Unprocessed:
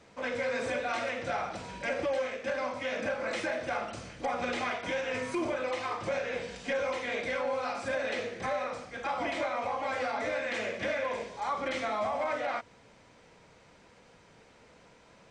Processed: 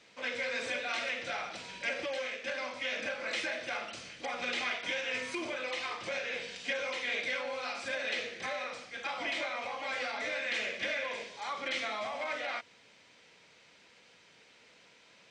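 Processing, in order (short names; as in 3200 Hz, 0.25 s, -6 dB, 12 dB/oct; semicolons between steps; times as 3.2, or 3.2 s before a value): weighting filter D; gain -6.5 dB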